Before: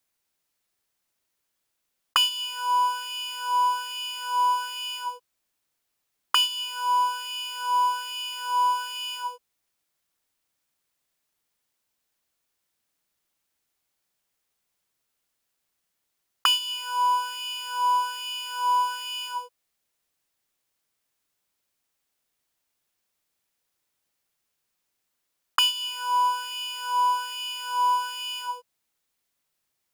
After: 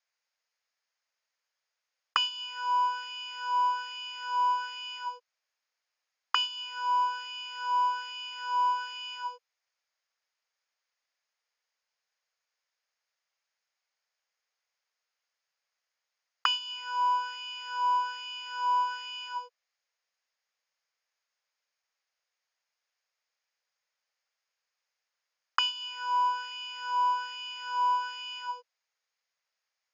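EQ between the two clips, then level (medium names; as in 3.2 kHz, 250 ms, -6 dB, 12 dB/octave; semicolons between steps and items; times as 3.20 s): steep high-pass 450 Hz 96 dB/octave; dynamic bell 5 kHz, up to -7 dB, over -43 dBFS, Q 1.1; rippled Chebyshev low-pass 6.8 kHz, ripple 6 dB; 0.0 dB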